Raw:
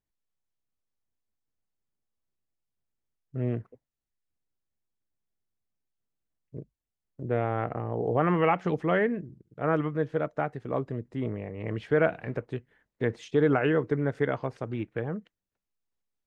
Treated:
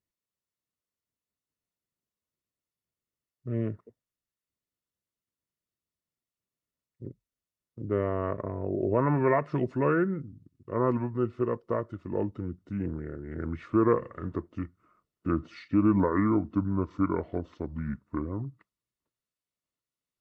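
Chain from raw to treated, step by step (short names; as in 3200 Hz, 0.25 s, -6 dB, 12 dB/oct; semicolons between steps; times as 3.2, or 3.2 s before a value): speed glide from 100% -> 61%; notch comb 800 Hz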